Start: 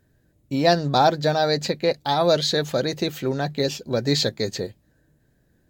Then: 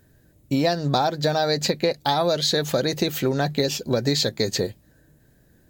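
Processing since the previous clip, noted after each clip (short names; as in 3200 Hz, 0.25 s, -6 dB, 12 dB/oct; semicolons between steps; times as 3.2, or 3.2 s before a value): high shelf 8200 Hz +7 dB; compressor 12:1, threshold -23 dBFS, peak gain reduction 12 dB; gain +5.5 dB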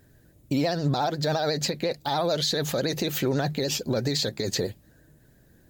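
limiter -16 dBFS, peak gain reduction 9 dB; vibrato 14 Hz 70 cents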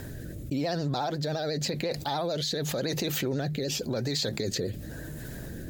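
rotary speaker horn 0.9 Hz; fast leveller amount 70%; gain -5.5 dB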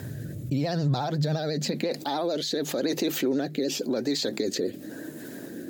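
high-pass sweep 120 Hz -> 280 Hz, 0.98–2.06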